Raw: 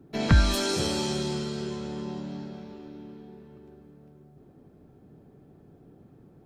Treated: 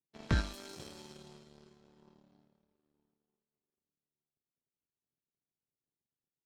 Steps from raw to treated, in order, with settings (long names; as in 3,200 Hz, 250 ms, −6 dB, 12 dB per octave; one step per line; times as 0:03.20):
0:03.14–0:03.77: high-pass filter 140 Hz 12 dB per octave
power curve on the samples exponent 2
level −7 dB